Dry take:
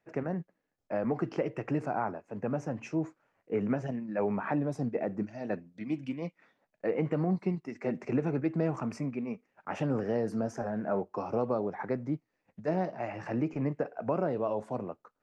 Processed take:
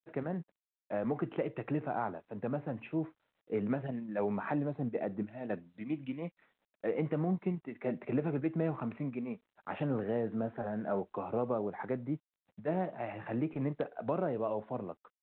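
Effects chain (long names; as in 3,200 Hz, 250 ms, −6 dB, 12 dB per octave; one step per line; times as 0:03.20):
0:07.53–0:08.24: dynamic equaliser 600 Hz, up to +5 dB, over −53 dBFS, Q 6.9
level −3 dB
G.726 40 kbit/s 8,000 Hz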